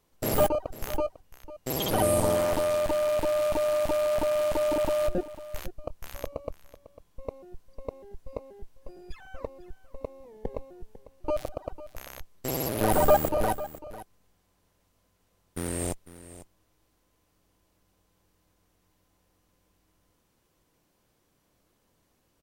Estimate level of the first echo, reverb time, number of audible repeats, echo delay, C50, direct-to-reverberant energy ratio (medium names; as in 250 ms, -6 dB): -16.0 dB, no reverb, 1, 499 ms, no reverb, no reverb